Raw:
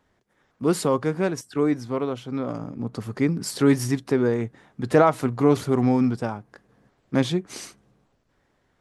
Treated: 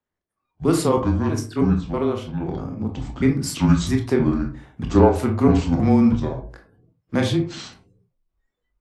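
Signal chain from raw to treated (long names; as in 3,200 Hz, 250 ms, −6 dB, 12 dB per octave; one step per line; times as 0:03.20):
pitch shifter gated in a rhythm −6.5 semitones, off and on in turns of 322 ms
on a send at −3 dB: convolution reverb RT60 0.40 s, pre-delay 20 ms
on the sum: noise reduction from a noise print of the clip's start 21 dB
frequency shifter −21 Hz
level +1.5 dB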